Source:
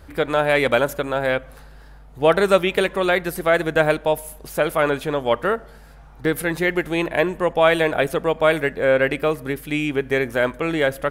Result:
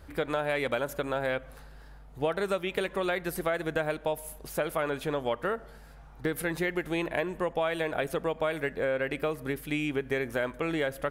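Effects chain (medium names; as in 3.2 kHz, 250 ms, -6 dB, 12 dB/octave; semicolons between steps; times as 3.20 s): compression 6:1, threshold -20 dBFS, peak gain reduction 11 dB; trim -5.5 dB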